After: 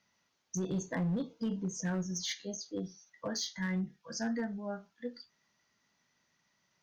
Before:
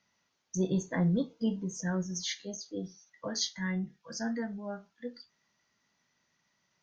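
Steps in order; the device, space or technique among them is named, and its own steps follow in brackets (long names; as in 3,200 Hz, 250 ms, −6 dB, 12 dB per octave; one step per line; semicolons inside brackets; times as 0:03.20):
limiter into clipper (brickwall limiter −26 dBFS, peak gain reduction 7 dB; hard clipping −28.5 dBFS, distortion −22 dB)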